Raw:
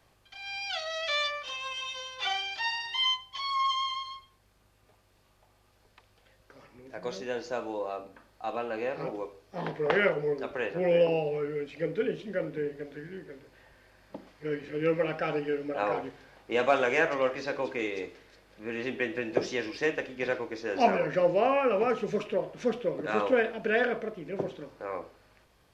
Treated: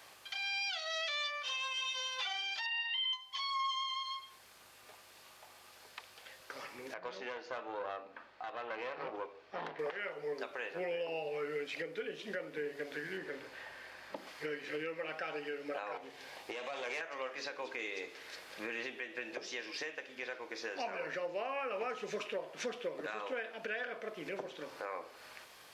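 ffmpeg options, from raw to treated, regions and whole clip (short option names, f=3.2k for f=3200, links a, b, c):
-filter_complex "[0:a]asettb=1/sr,asplit=3[a][b][c];[a]atrim=end=2.664[d];[b]atrim=start=2.66:end=3.13,asetpts=PTS-STARTPTS,afade=t=in:d=0.004:c=qsin,afade=t=out:st=0.466:d=0.004:c=qsin,highpass=370,equalizer=f=370:t=q:w=4:g=-7,equalizer=f=630:t=q:w=4:g=8,equalizer=f=980:t=q:w=4:g=-5,equalizer=f=1.8k:t=q:w=4:g=3,equalizer=f=2.9k:t=q:w=4:g=9,lowpass=f=3.8k:w=0.5412,lowpass=f=3.8k:w=1.3066,aecho=1:1:6.4:0.4,atrim=end_sample=20727,acompressor=threshold=-24dB:ratio=6:attack=3.2:release=140:knee=1:detection=peak[e];[c]atrim=start=3.126[f];[d][e]acrossfade=d=0.004:c1=hsin:c2=qsin[g];[g][f]acrossfade=d=0.004:c1=qsin:c2=hsin,asettb=1/sr,asplit=3[h][i][j];[h]atrim=end=6.944[k];[i]atrim=start=6.94:end=9.79,asetpts=PTS-STARTPTS,afade=t=in:d=0.004:c=qsin,afade=t=out:st=2.846:d=0.004:c=qsin,lowpass=2.8k,aeval=exprs='(tanh(28.2*val(0)+0.7)-tanh(0.7))/28.2':c=same[l];[j]atrim=start=9.786[m];[k][l]acrossfade=d=0.004:c1=hsin:c2=qsin[n];[n][m]acrossfade=d=0.004:c1=qsin:c2=hsin,asettb=1/sr,asplit=3[o][p][q];[o]atrim=end=13.174[r];[p]atrim=start=13.17:end=14.16,asetpts=PTS-STARTPTS,afade=t=in:d=0.004:c=qsin,afade=t=out:st=0.986:d=0.004:c=qsin,aemphasis=mode=reproduction:type=cd,asplit=2[s][t];[t]adelay=41,volume=-12dB[u];[s][u]amix=inputs=2:normalize=0,atrim=end_sample=43659[v];[q]atrim=start=14.156[w];[r][v]acrossfade=d=0.004:c1=hsin:c2=qsin[x];[x][w]acrossfade=d=0.004:c1=qsin:c2=hsin,asettb=1/sr,asplit=3[y][z][aa];[y]atrim=end=15.974[ab];[z]atrim=start=15.97:end=17.01,asetpts=PTS-STARTPTS,afade=t=in:d=0.004:c=qsin,afade=t=out:st=1.036:d=0.004:c=qsin,equalizer=f=1.4k:t=o:w=0.48:g=-8.5,acompressor=threshold=-34dB:ratio=4:attack=3.2:release=140:knee=1:detection=peak,aeval=exprs='(tanh(44.7*val(0)+0.35)-tanh(0.35))/44.7':c=same[ac];[aa]atrim=start=17.006[ad];[ab][ac]acrossfade=d=0.004:c1=hsin:c2=qsin[ae];[ae][ad]acrossfade=d=0.004:c1=qsin:c2=hsin,highpass=f=1.2k:p=1,acompressor=threshold=-52dB:ratio=2.5,alimiter=level_in=18dB:limit=-24dB:level=0:latency=1:release=424,volume=-18dB,volume=13dB"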